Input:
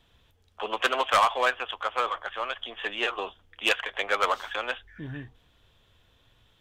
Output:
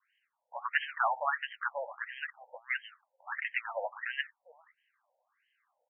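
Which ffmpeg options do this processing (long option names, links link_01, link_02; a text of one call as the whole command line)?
ffmpeg -i in.wav -af "adynamicequalizer=threshold=0.0112:dfrequency=1800:dqfactor=3.3:tfrequency=1800:tqfactor=3.3:attack=5:release=100:ratio=0.375:range=2.5:mode=boostabove:tftype=bell,asetrate=49392,aresample=44100,afftfilt=real='re*between(b*sr/1024,660*pow(2300/660,0.5+0.5*sin(2*PI*1.5*pts/sr))/1.41,660*pow(2300/660,0.5+0.5*sin(2*PI*1.5*pts/sr))*1.41)':imag='im*between(b*sr/1024,660*pow(2300/660,0.5+0.5*sin(2*PI*1.5*pts/sr))/1.41,660*pow(2300/660,0.5+0.5*sin(2*PI*1.5*pts/sr))*1.41)':win_size=1024:overlap=0.75,volume=-3.5dB" out.wav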